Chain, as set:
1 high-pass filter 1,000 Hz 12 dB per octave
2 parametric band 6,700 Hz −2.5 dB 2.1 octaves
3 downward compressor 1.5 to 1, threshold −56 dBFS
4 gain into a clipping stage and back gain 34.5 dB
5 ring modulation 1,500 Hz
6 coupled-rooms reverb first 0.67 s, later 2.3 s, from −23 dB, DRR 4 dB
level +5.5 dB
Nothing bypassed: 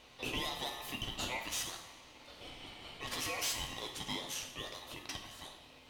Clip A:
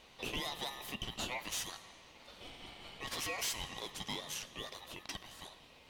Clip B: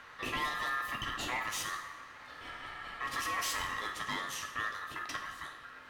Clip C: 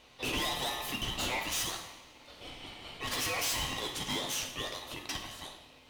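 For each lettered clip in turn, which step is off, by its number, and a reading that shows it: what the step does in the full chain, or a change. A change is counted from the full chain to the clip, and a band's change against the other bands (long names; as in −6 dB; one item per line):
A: 6, change in integrated loudness −1.5 LU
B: 1, 1 kHz band +9.5 dB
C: 3, average gain reduction 6.5 dB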